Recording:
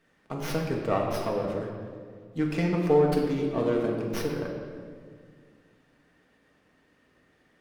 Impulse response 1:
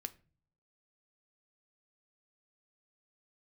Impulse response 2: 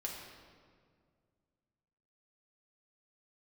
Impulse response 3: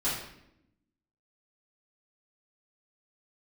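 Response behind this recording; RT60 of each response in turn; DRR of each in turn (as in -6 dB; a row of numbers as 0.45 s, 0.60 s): 2; no single decay rate, 2.0 s, 0.80 s; 9.5 dB, -2.0 dB, -12.5 dB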